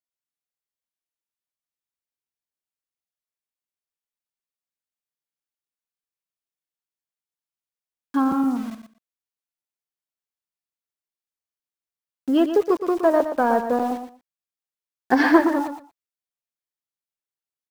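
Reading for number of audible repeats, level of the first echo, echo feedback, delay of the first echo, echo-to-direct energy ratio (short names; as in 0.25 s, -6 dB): 2, -9.0 dB, 16%, 0.118 s, -9.0 dB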